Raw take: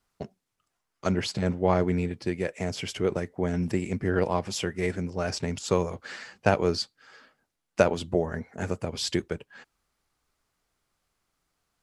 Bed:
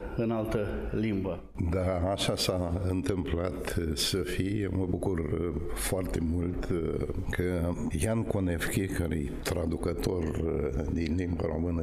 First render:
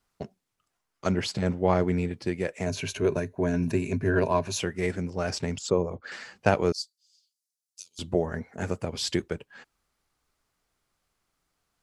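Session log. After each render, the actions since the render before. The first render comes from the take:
0:02.66–0:04.60: EQ curve with evenly spaced ripples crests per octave 1.5, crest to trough 11 dB
0:05.56–0:06.12: spectral envelope exaggerated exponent 1.5
0:06.72–0:07.99: inverse Chebyshev high-pass filter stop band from 1,900 Hz, stop band 50 dB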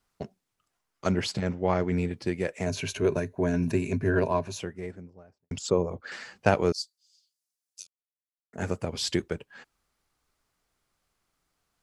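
0:01.40–0:01.92: Chebyshev low-pass with heavy ripple 7,600 Hz, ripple 3 dB
0:03.93–0:05.51: fade out and dull
0:07.87–0:08.53: silence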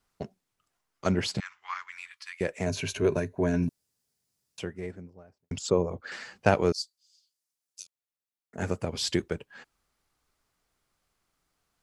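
0:01.40–0:02.41: elliptic high-pass filter 1,100 Hz, stop band 50 dB
0:03.69–0:04.58: fill with room tone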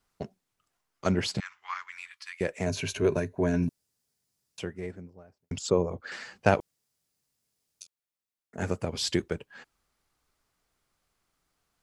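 0:06.60–0:07.81: fill with room tone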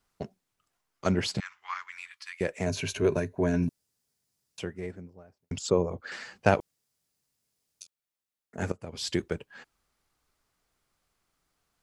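0:08.72–0:09.27: fade in, from −17.5 dB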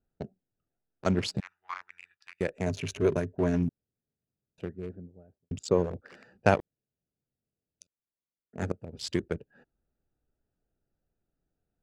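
adaptive Wiener filter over 41 samples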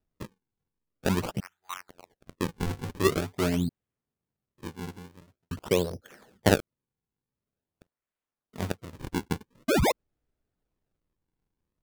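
0:09.68–0:09.92: sound drawn into the spectrogram rise 1,100–4,400 Hz −22 dBFS
sample-and-hold swept by an LFO 40×, swing 160% 0.46 Hz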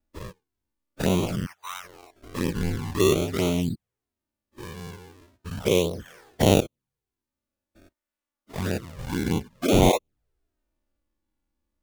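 every bin's largest magnitude spread in time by 120 ms
flanger swept by the level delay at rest 3.5 ms, full sweep at −19 dBFS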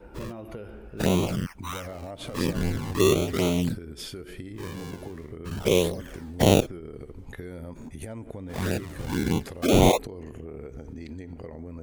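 mix in bed −9.5 dB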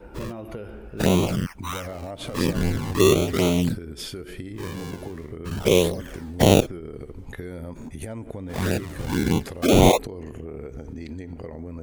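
level +3.5 dB
brickwall limiter −2 dBFS, peak gain reduction 2 dB

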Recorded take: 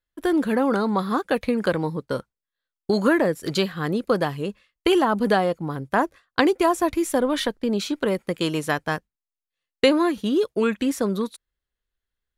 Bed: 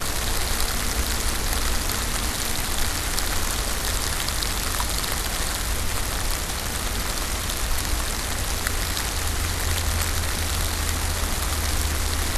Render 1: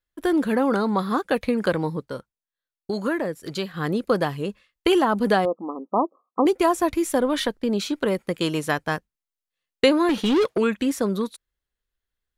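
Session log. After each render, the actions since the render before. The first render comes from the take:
0:02.10–0:03.74: clip gain −6 dB
0:05.45–0:06.46: linear-phase brick-wall band-pass 190–1,300 Hz
0:10.09–0:10.58: mid-hump overdrive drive 24 dB, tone 2,400 Hz, clips at −13 dBFS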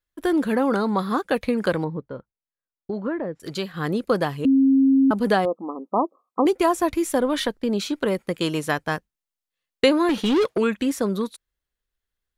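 0:01.84–0:03.40: head-to-tape spacing loss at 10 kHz 43 dB
0:04.45–0:05.11: beep over 269 Hz −13 dBFS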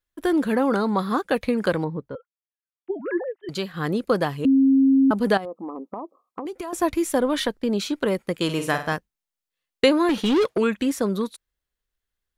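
0:02.15–0:03.49: three sine waves on the formant tracks
0:05.37–0:06.73: downward compressor 10 to 1, threshold −28 dBFS
0:08.44–0:08.93: flutter between parallel walls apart 8.5 metres, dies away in 0.38 s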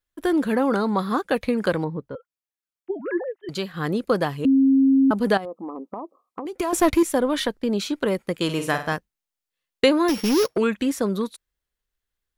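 0:06.56–0:07.03: leveller curve on the samples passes 2
0:10.08–0:10.56: samples sorted by size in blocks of 8 samples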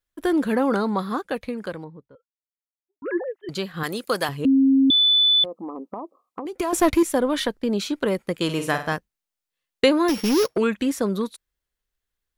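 0:00.77–0:03.02: fade out quadratic
0:03.83–0:04.29: spectral tilt +3.5 dB per octave
0:04.90–0:05.44: beep over 3,490 Hz −14 dBFS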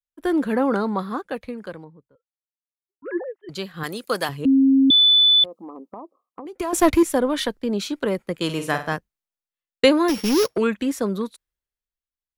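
multiband upward and downward expander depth 40%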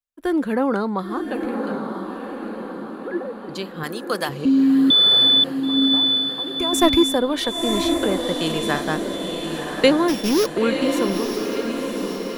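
feedback delay with all-pass diffusion 991 ms, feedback 57%, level −5 dB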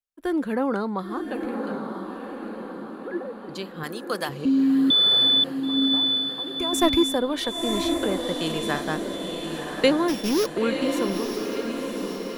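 level −4 dB

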